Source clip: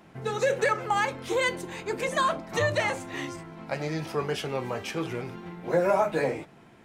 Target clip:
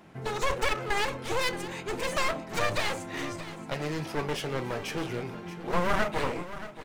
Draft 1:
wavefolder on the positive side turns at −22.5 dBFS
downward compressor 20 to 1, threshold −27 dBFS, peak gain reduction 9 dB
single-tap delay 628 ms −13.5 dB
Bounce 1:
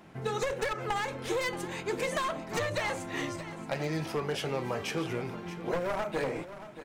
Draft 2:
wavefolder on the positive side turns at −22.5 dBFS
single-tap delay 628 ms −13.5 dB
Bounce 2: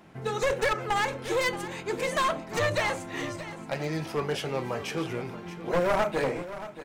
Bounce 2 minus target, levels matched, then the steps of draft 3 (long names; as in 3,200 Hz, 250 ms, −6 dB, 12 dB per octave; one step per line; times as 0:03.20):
wavefolder on the positive side: distortion −11 dB
wavefolder on the positive side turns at −30.5 dBFS
single-tap delay 628 ms −13.5 dB